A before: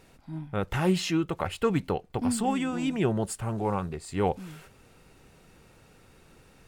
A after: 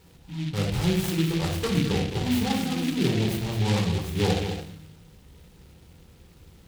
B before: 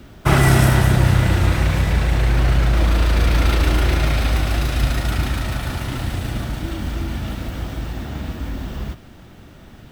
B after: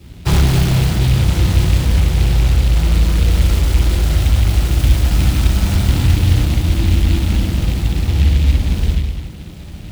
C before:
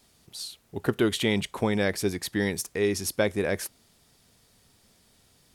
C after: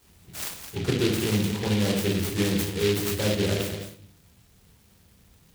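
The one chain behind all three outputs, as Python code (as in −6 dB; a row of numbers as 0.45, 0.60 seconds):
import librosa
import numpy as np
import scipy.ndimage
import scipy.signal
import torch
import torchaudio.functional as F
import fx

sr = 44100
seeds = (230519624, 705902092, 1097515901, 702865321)

p1 = scipy.signal.sosfilt(scipy.signal.butter(2, 43.0, 'highpass', fs=sr, output='sos'), x)
p2 = fx.peak_eq(p1, sr, hz=5500.0, db=10.0, octaves=0.42)
p3 = fx.room_shoebox(p2, sr, seeds[0], volume_m3=570.0, walls='furnished', distance_m=4.2)
p4 = np.clip(10.0 ** (4.0 / 20.0) * p3, -1.0, 1.0) / 10.0 ** (4.0 / 20.0)
p5 = fx.low_shelf(p4, sr, hz=170.0, db=10.0)
p6 = fx.rider(p5, sr, range_db=4, speed_s=0.5)
p7 = p6 + fx.echo_single(p6, sr, ms=211, db=-9.0, dry=0)
p8 = fx.noise_mod_delay(p7, sr, seeds[1], noise_hz=2800.0, depth_ms=0.14)
y = p8 * 10.0 ** (-8.5 / 20.0)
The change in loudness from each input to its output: +3.0, +4.0, +2.0 LU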